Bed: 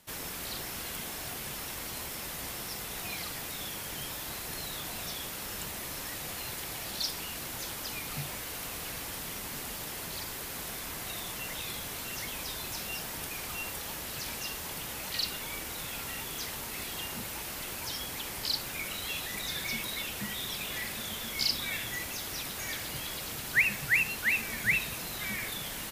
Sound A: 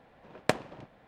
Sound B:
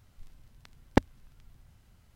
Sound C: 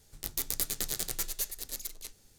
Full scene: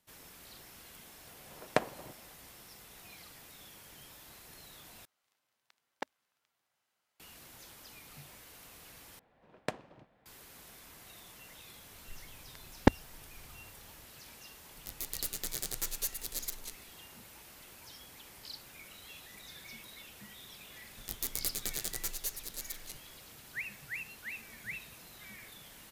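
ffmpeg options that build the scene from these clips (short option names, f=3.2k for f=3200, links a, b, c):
-filter_complex "[1:a]asplit=2[a][b];[2:a]asplit=2[c][d];[3:a]asplit=2[e][f];[0:a]volume=-15dB[g];[a]equalizer=f=840:t=o:w=3:g=5[h];[c]highpass=640[i];[e]dynaudnorm=f=200:g=5:m=11.5dB[j];[g]asplit=3[k][l][m];[k]atrim=end=5.054[n];[i]atrim=end=2.15,asetpts=PTS-STARTPTS,volume=-11dB[o];[l]atrim=start=7.196:end=9.194[p];[b]atrim=end=1.07,asetpts=PTS-STARTPTS,volume=-10dB[q];[m]atrim=start=10.256[r];[h]atrim=end=1.07,asetpts=PTS-STARTPTS,volume=-6dB,afade=t=in:d=0.004:c=hsin,afade=t=out:st=1.066:d=0.004:c=hsin,adelay=1270[s];[d]atrim=end=2.15,asetpts=PTS-STARTPTS,volume=-0.5dB,afade=t=in:d=0.004:c=hsin,afade=t=out:st=2.146:d=0.004:c=hsin,adelay=11900[t];[j]atrim=end=2.38,asetpts=PTS-STARTPTS,volume=-8.5dB,afade=t=in:d=0.004:c=hsin,afade=t=out:st=2.376:d=0.004:c=hsin,adelay=14630[u];[f]atrim=end=2.38,asetpts=PTS-STARTPTS,volume=-3.5dB,afade=t=in:d=0.004:c=hsin,afade=t=out:st=2.376:d=0.004:c=hsin,adelay=20850[v];[n][o]acrossfade=d=0.004:c1=hsin:c2=hsin[w];[w][p]acrossfade=d=0.004:c1=hsin:c2=hsin[x];[x][q]acrossfade=d=0.004:c1=hsin:c2=hsin[y];[y][r]acrossfade=d=0.004:c1=hsin:c2=hsin[z];[z][s][t][u][v]amix=inputs=5:normalize=0"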